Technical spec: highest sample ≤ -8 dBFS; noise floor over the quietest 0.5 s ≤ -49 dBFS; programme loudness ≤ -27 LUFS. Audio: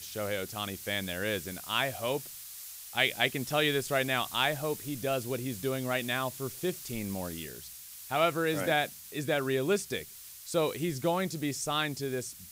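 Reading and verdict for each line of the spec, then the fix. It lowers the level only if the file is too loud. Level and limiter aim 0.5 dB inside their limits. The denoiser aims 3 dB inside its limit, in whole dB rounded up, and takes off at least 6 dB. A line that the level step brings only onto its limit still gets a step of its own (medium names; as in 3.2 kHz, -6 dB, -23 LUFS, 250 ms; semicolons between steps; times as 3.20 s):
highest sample -11.0 dBFS: pass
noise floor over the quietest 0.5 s -47 dBFS: fail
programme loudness -31.5 LUFS: pass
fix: noise reduction 6 dB, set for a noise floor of -47 dBFS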